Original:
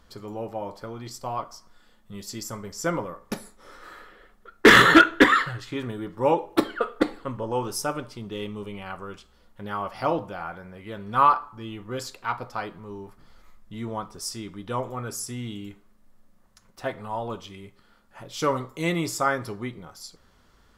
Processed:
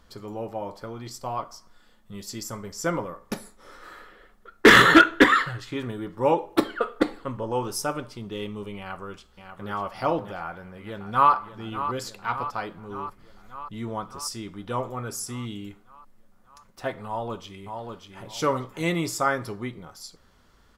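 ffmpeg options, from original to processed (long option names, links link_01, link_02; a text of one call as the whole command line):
ffmpeg -i in.wav -filter_complex "[0:a]asplit=2[link_01][link_02];[link_02]afade=type=in:start_time=8.78:duration=0.01,afade=type=out:start_time=9.72:duration=0.01,aecho=0:1:590|1180|1770|2360|2950:0.398107|0.179148|0.0806167|0.0362775|0.0163249[link_03];[link_01][link_03]amix=inputs=2:normalize=0,asplit=2[link_04][link_05];[link_05]afade=type=in:start_time=10.41:duration=0.01,afade=type=out:start_time=11.32:duration=0.01,aecho=0:1:590|1180|1770|2360|2950|3540|4130|4720|5310|5900:0.266073|0.186251|0.130376|0.0912629|0.063884|0.0447188|0.0313032|0.0219122|0.0153386|0.010737[link_06];[link_04][link_06]amix=inputs=2:normalize=0,asplit=2[link_07][link_08];[link_08]afade=type=in:start_time=17.07:duration=0.01,afade=type=out:start_time=18.24:duration=0.01,aecho=0:1:590|1180|1770:0.562341|0.140585|0.0351463[link_09];[link_07][link_09]amix=inputs=2:normalize=0" out.wav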